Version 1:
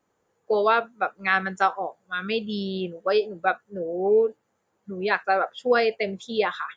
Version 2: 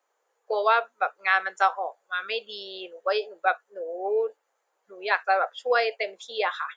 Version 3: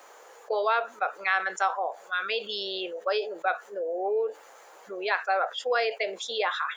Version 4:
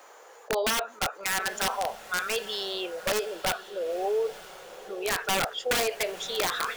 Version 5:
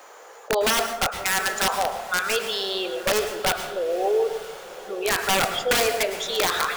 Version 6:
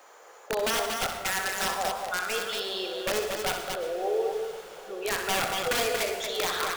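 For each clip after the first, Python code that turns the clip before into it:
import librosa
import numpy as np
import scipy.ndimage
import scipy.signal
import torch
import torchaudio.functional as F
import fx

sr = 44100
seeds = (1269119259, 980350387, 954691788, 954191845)

y1 = scipy.signal.sosfilt(scipy.signal.butter(4, 500.0, 'highpass', fs=sr, output='sos'), x)
y2 = fx.env_flatten(y1, sr, amount_pct=50)
y2 = F.gain(torch.from_numpy(y2), -5.0).numpy()
y3 = (np.mod(10.0 ** (19.5 / 20.0) * y2 + 1.0, 2.0) - 1.0) / 10.0 ** (19.5 / 20.0)
y3 = fx.echo_diffused(y3, sr, ms=952, feedback_pct=50, wet_db=-15.5)
y4 = fx.rev_plate(y3, sr, seeds[0], rt60_s=0.76, hf_ratio=0.55, predelay_ms=95, drr_db=8.0)
y4 = F.gain(torch.from_numpy(y4), 5.0).numpy()
y5 = fx.echo_multitap(y4, sr, ms=(64, 233), db=(-8.0, -5.0))
y5 = F.gain(torch.from_numpy(y5), -7.0).numpy()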